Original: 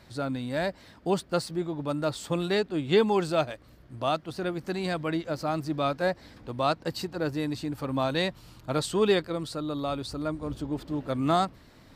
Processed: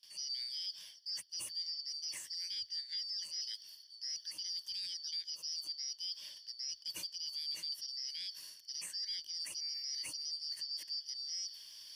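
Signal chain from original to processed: four frequency bands reordered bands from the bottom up 4321; high-pass 77 Hz 24 dB/octave; pre-emphasis filter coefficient 0.9; gate with hold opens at -50 dBFS; rippled EQ curve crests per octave 1.2, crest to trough 9 dB; reverse; compression 12:1, threshold -41 dBFS, peak gain reduction 20.5 dB; reverse; peak limiter -38.5 dBFS, peak gain reduction 9.5 dB; trim +6.5 dB

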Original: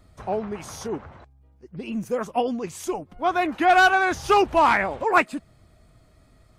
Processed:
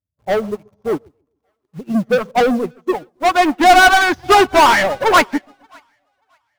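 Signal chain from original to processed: expander on every frequency bin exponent 1.5; low-pass that closes with the level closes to 2.4 kHz, closed at -19.5 dBFS; high-pass 52 Hz 12 dB/octave; level-controlled noise filter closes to 570 Hz, open at -19 dBFS; tilt EQ -1.5 dB/octave; overdrive pedal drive 31 dB, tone 5.4 kHz, clips at -8.5 dBFS; in parallel at -6 dB: bit crusher 5-bit; on the sum: two-band feedback delay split 630 Hz, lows 138 ms, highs 582 ms, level -13 dB; on a send at -21 dB: reverberation RT60 1.5 s, pre-delay 5 ms; on the sum: upward expansion 2.5:1, over -32 dBFS; trim +3 dB

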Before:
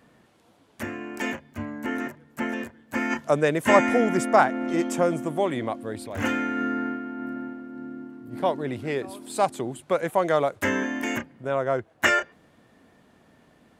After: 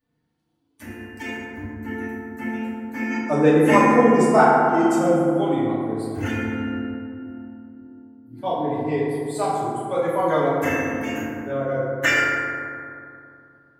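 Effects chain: expander on every frequency bin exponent 1.5; FDN reverb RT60 2.5 s, low-frequency decay 1.25×, high-frequency decay 0.35×, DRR -9 dB; trim -3 dB

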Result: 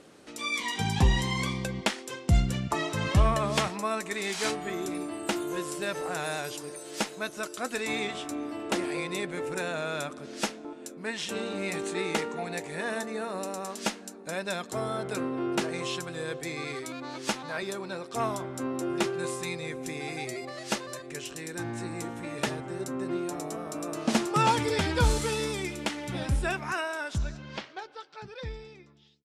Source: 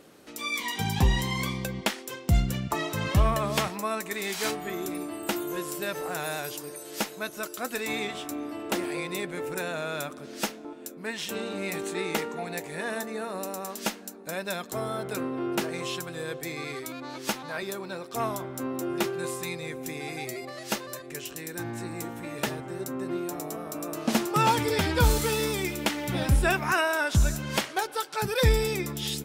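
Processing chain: fade out at the end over 5.32 s; low-pass 10 kHz 24 dB/octave, from 27.18 s 5.2 kHz

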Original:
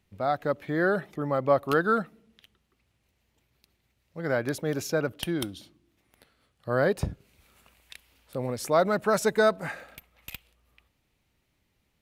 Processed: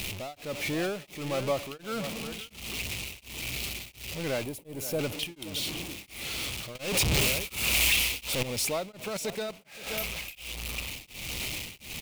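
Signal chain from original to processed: jump at every zero crossing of -26.5 dBFS; 4.44–4.99 s: high-order bell 2.8 kHz -10.5 dB 2.8 oct; echo from a far wall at 90 m, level -12 dB; 6.75–8.43 s: waveshaping leveller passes 5; 9.08–9.87 s: level held to a coarse grid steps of 12 dB; resonant high shelf 2 kHz +6 dB, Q 3; compression 6:1, threshold -15 dBFS, peak gain reduction 9.5 dB; tremolo of two beating tones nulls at 1.4 Hz; trim -6 dB

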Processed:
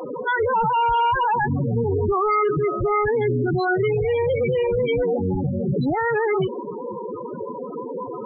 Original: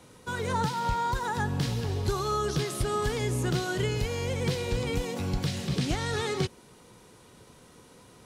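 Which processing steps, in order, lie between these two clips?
tilt shelf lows +3.5 dB, about 1.1 kHz; overdrive pedal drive 40 dB, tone 6.5 kHz, clips at -12.5 dBFS; loudest bins only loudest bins 8

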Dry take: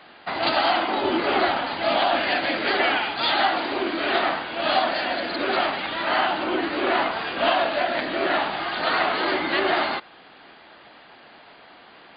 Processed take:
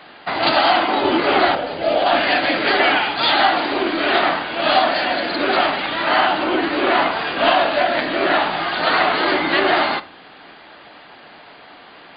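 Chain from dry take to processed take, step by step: 1.55–2.06 s: graphic EQ 250/500/1000/2000/4000 Hz -6/+9/-11/-5/-7 dB; reverberation RT60 0.45 s, pre-delay 7 ms, DRR 13.5 dB; trim +5.5 dB

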